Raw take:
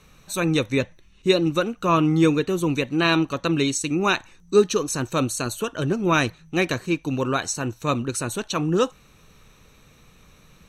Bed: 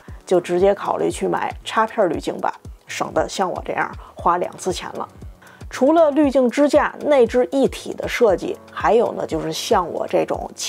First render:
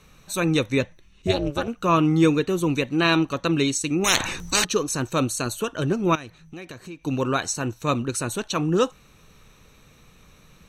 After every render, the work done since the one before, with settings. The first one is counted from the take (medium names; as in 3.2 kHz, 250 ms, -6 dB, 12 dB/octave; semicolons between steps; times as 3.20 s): 1.27–1.68 s: AM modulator 280 Hz, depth 95%; 4.04–4.65 s: spectrum-flattening compressor 10:1; 6.15–7.04 s: compression 4:1, threshold -37 dBFS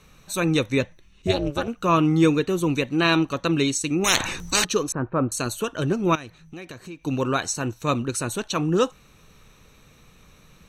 4.92–5.32 s: low-pass 1.6 kHz 24 dB/octave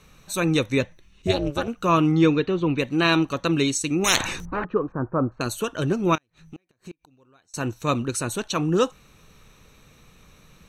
2.11–2.78 s: low-pass 6.3 kHz -> 3.3 kHz 24 dB/octave; 4.45–5.41 s: low-pass 1.5 kHz 24 dB/octave; 6.17–7.54 s: inverted gate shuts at -29 dBFS, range -34 dB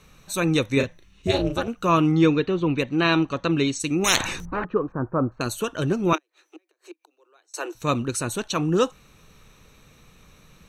0.73–1.57 s: doubling 36 ms -5.5 dB; 2.83–3.80 s: distance through air 86 m; 6.13–7.75 s: steep high-pass 310 Hz 96 dB/octave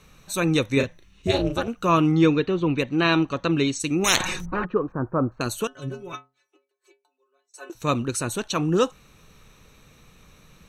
4.20–4.72 s: comb 5.5 ms, depth 55%; 5.67–7.70 s: inharmonic resonator 130 Hz, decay 0.32 s, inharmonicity 0.008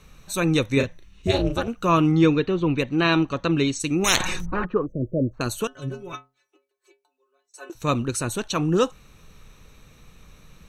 4.86–5.34 s: spectral selection erased 660–5700 Hz; bass shelf 69 Hz +8 dB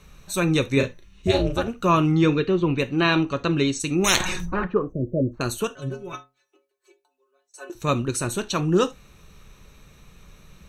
gated-style reverb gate 100 ms falling, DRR 10.5 dB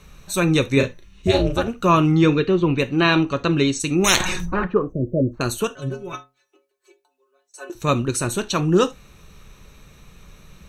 trim +3 dB; peak limiter -3 dBFS, peak gain reduction 1 dB